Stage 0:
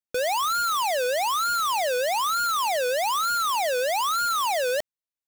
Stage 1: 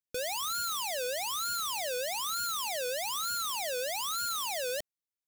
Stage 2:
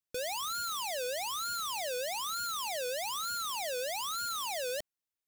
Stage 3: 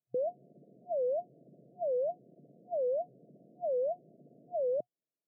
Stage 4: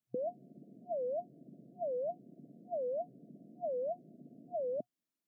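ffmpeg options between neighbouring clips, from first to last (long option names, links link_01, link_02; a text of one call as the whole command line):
ffmpeg -i in.wav -af "equalizer=frequency=960:width=0.55:gain=-11.5,volume=-2.5dB" out.wav
ffmpeg -i in.wav -af "asoftclip=type=tanh:threshold=-29dB" out.wav
ffmpeg -i in.wav -af "afftfilt=real='re*between(b*sr/4096,120,720)':imag='im*between(b*sr/4096,120,720)':win_size=4096:overlap=0.75,volume=6dB" out.wav
ffmpeg -i in.wav -af "equalizer=frequency=125:width_type=o:width=1:gain=-3,equalizer=frequency=250:width_type=o:width=1:gain=8,equalizer=frequency=500:width_type=o:width=1:gain=-9,volume=2dB" out.wav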